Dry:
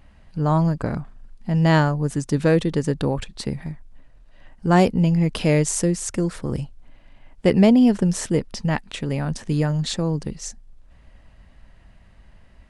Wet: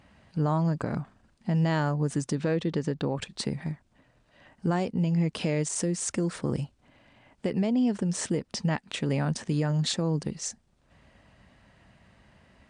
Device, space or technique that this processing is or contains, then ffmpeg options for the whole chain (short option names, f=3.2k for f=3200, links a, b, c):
podcast mastering chain: -filter_complex "[0:a]asettb=1/sr,asplit=3[a][b][c];[a]atrim=end=2.354[d];[b]atrim=start=2.35:end=3.17,asetpts=PTS-STARTPTS,afade=t=in:d=0.004:c=qsin,afade=t=out:st=0.816:d=0.004:c=qsin,lowpass=5.6k[e];[c]atrim=start=3.166[f];[d][e]acrossfade=d=0.004:c1=hsin:c2=qsin[g];[g][f]acrossfade=d=0.004:c1=qsin:c2=hsin,highpass=110,deesser=0.4,acompressor=threshold=-22dB:ratio=2.5,alimiter=limit=-18dB:level=0:latency=1:release=177" -ar 22050 -c:a libmp3lame -b:a 112k